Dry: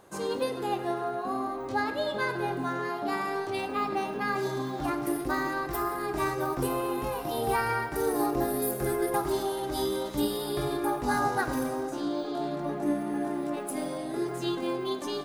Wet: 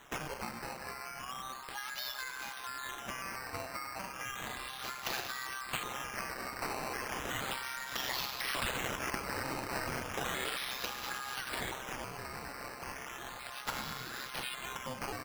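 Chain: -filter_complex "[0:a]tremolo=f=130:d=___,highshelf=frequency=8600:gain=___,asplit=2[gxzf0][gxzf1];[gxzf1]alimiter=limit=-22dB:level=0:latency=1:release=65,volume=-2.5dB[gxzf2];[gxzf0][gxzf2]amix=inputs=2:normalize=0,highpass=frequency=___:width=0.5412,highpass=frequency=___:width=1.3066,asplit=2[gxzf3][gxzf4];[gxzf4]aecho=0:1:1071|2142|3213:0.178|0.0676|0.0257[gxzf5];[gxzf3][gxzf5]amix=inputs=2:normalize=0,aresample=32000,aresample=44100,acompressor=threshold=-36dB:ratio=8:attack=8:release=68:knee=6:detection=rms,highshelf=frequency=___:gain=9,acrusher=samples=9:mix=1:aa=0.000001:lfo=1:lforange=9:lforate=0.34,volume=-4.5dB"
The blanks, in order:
0.621, 10, 1100, 1100, 2700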